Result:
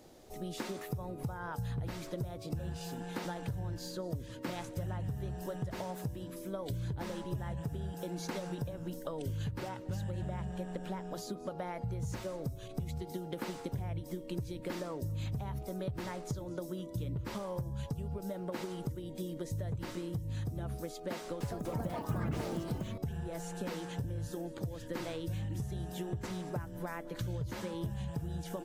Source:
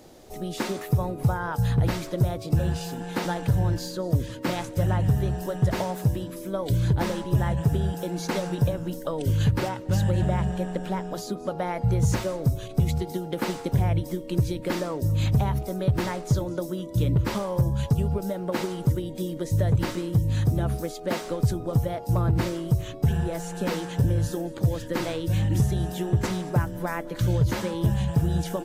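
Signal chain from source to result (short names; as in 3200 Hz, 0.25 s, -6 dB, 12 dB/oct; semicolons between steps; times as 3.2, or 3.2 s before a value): compressor, threshold -27 dBFS, peak gain reduction 10.5 dB; 21.16–23.26 echoes that change speed 0.245 s, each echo +5 st, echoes 3; gain -7.5 dB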